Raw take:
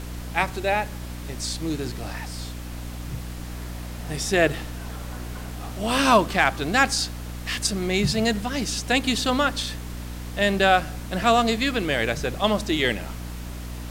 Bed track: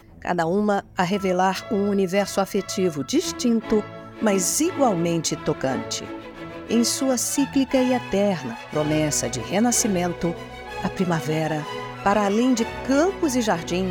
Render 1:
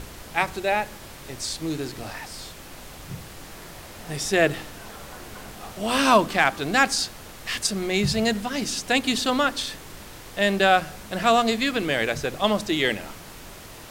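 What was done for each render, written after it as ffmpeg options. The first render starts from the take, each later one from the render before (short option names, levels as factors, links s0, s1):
-af "bandreject=f=60:t=h:w=6,bandreject=f=120:t=h:w=6,bandreject=f=180:t=h:w=6,bandreject=f=240:t=h:w=6,bandreject=f=300:t=h:w=6"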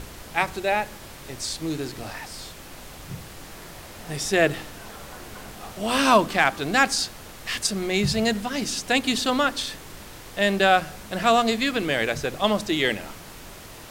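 -af anull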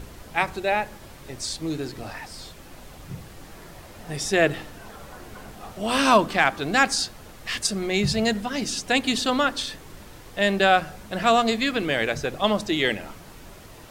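-af "afftdn=nr=6:nf=-42"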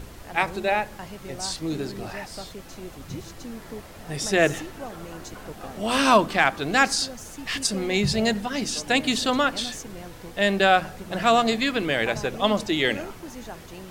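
-filter_complex "[1:a]volume=0.126[s0];[0:a][s0]amix=inputs=2:normalize=0"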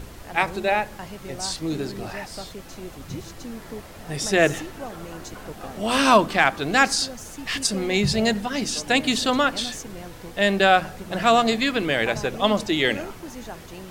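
-af "volume=1.19"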